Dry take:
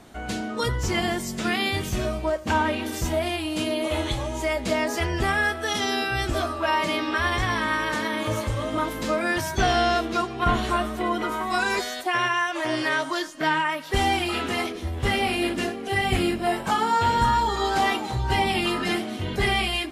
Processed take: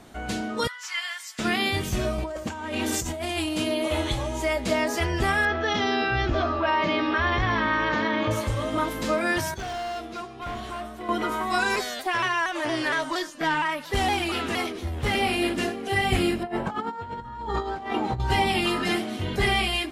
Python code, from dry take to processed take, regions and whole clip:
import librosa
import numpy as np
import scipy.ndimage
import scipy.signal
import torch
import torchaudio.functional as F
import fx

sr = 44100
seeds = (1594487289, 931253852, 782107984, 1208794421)

y = fx.chain(x, sr, fx.highpass(hz=1300.0, slope=24),
    fx.high_shelf(hz=7200.0, db=-10.0), at=(0.67, 1.39))
y = fx.chain(y, sr, fx.dynamic_eq(hz=7200.0, q=2.1, threshold_db=-53.0, ratio=4.0, max_db=8),
    fx.over_compress(threshold_db=-30.0, ratio=-1.0), at=(2.18, 3.49))
y = fx.chain(y, sr, fx.air_absorb(metres=190.0),
    fx.resample_bad(factor=3, down='none', up='filtered'),
    fx.env_flatten(amount_pct=50), at=(5.45, 8.31))
y = fx.chain(y, sr, fx.comb_fb(f0_hz=100.0, decay_s=0.71, harmonics='odd', damping=0.0, mix_pct=70),
    fx.overload_stage(gain_db=29.5), at=(9.54, 11.09))
y = fx.chain(y, sr, fx.tube_stage(drive_db=16.0, bias=0.25),
    fx.vibrato_shape(shape='saw_down', rate_hz=4.3, depth_cents=100.0), at=(11.76, 15.15))
y = fx.chain(y, sr, fx.lowpass(hz=1100.0, slope=6),
    fx.over_compress(threshold_db=-29.0, ratio=-0.5), at=(16.43, 18.2))